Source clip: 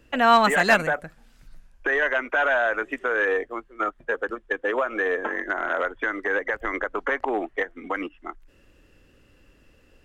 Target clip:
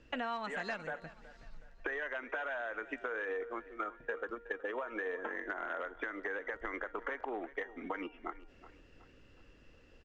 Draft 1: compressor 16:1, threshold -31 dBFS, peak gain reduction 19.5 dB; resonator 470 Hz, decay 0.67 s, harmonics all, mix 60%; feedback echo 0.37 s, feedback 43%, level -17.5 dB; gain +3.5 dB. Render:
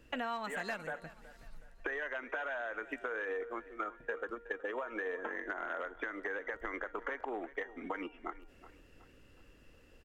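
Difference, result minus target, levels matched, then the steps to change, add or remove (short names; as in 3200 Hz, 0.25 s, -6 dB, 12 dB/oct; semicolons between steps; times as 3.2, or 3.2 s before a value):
8000 Hz band +6.0 dB
add after compressor: LPF 6500 Hz 24 dB/oct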